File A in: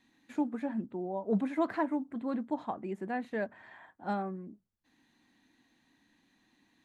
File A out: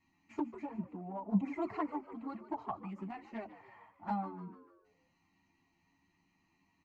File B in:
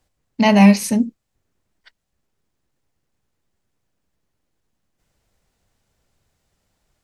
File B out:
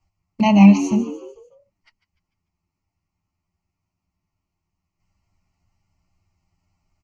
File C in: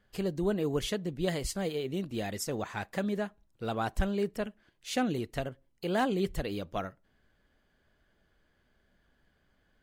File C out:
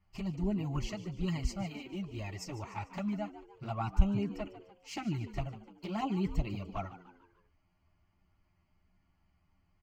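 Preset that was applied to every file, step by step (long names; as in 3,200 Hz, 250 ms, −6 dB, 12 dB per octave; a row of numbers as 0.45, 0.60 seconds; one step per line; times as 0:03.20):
low-pass filter 3,800 Hz 6 dB per octave
low-shelf EQ 64 Hz +5.5 dB
phaser with its sweep stopped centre 2,400 Hz, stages 8
flanger swept by the level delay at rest 11.9 ms, full sweep at −27.5 dBFS
notch comb filter 250 Hz
echo with shifted repeats 148 ms, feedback 45%, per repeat +83 Hz, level −14.5 dB
level +3.5 dB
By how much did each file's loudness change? −5.0, +0.5, −3.5 LU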